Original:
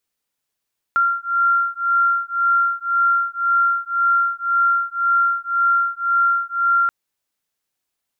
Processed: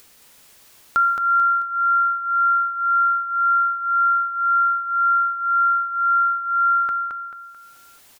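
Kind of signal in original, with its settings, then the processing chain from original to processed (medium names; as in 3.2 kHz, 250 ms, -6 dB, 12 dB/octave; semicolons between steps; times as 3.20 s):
beating tones 1.38 kHz, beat 1.9 Hz, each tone -18.5 dBFS 5.93 s
upward compressor, threshold -29 dBFS; on a send: feedback delay 219 ms, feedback 42%, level -5.5 dB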